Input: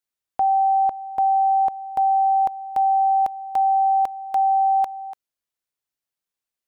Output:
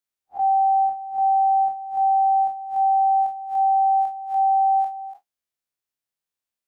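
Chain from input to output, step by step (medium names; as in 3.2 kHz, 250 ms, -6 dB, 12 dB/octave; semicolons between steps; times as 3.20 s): spectral blur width 81 ms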